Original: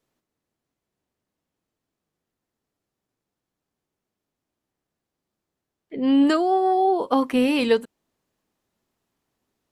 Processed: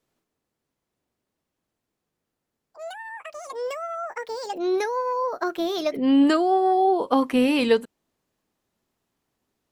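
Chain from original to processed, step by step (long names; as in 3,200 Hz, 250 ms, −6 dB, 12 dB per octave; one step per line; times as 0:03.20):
delay with pitch and tempo change per echo 86 ms, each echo +5 semitones, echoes 3, each echo −6 dB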